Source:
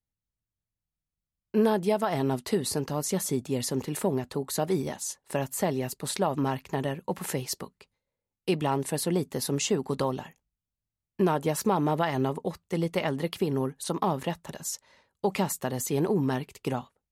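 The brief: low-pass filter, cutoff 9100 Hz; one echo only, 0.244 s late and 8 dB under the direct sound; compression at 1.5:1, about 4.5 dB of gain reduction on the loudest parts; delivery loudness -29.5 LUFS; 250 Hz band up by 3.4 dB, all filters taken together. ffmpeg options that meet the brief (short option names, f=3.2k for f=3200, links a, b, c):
-af "lowpass=9.1k,equalizer=f=250:t=o:g=4.5,acompressor=threshold=-30dB:ratio=1.5,aecho=1:1:244:0.398,volume=1dB"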